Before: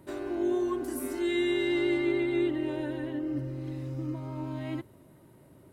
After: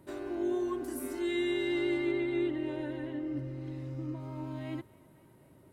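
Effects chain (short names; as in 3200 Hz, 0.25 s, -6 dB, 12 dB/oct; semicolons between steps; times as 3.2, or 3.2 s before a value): 2.11–4.2 high shelf 10000 Hz -10.5 dB; band-limited delay 0.257 s, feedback 73%, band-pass 1600 Hz, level -21.5 dB; gain -3.5 dB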